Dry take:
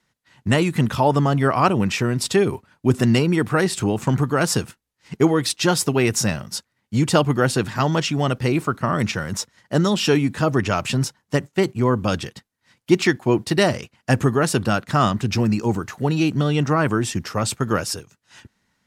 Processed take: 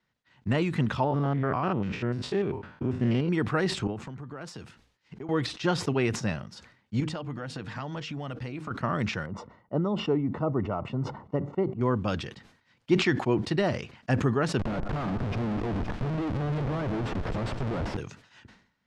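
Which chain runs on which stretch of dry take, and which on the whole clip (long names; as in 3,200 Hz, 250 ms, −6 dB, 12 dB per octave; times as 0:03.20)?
0:01.04–0:03.29: spectrum averaged block by block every 100 ms + high-shelf EQ 3,600 Hz −9.5 dB + highs frequency-modulated by the lows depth 0.11 ms
0:03.87–0:05.29: downward compressor 8 to 1, threshold −29 dBFS + multiband upward and downward expander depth 40%
0:07.00–0:08.71: hum removal 154.8 Hz, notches 3 + downward compressor, threshold −24 dBFS + notch filter 380 Hz, Q 6.4
0:09.26–0:11.81: Savitzky-Golay smoothing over 65 samples + low-shelf EQ 160 Hz −4 dB
0:14.59–0:17.97: high-shelf EQ 8,200 Hz +2.5 dB + comparator with hysteresis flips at −28 dBFS + delay that swaps between a low-pass and a high-pass 129 ms, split 1,500 Hz, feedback 72%, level −13 dB
whole clip: de-essing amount 55%; low-pass filter 4,200 Hz 12 dB per octave; level that may fall only so fast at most 99 dB per second; level −7.5 dB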